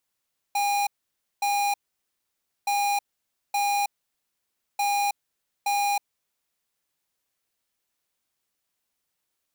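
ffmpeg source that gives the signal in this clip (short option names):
-f lavfi -i "aevalsrc='0.0631*(2*lt(mod(812*t,1),0.5)-1)*clip(min(mod(mod(t,2.12),0.87),0.32-mod(mod(t,2.12),0.87))/0.005,0,1)*lt(mod(t,2.12),1.74)':d=6.36:s=44100"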